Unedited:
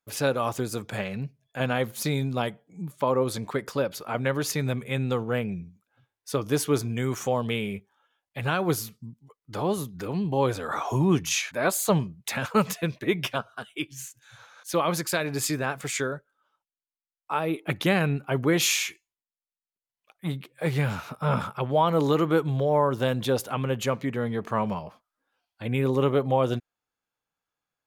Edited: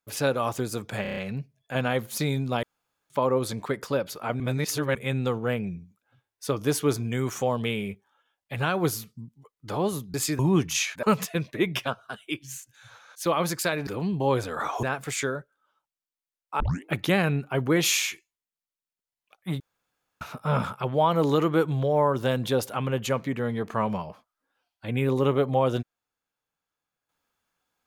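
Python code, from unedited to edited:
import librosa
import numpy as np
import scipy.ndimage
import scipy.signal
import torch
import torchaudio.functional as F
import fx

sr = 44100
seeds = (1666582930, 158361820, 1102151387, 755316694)

y = fx.edit(x, sr, fx.stutter(start_s=1.02, slice_s=0.03, count=6),
    fx.room_tone_fill(start_s=2.48, length_s=0.47),
    fx.reverse_span(start_s=4.25, length_s=0.55),
    fx.swap(start_s=9.99, length_s=0.96, other_s=15.35, other_length_s=0.25),
    fx.cut(start_s=11.59, length_s=0.92),
    fx.tape_start(start_s=17.37, length_s=0.25),
    fx.room_tone_fill(start_s=20.37, length_s=0.61), tone=tone)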